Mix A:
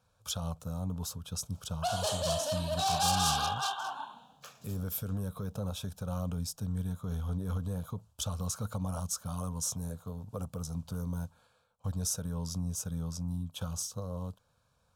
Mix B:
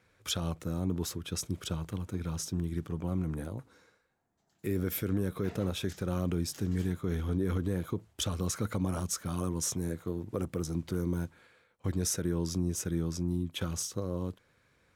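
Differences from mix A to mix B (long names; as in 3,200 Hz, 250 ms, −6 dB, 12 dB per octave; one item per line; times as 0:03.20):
first sound: muted
second sound: entry +2.10 s
master: remove phaser with its sweep stopped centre 830 Hz, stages 4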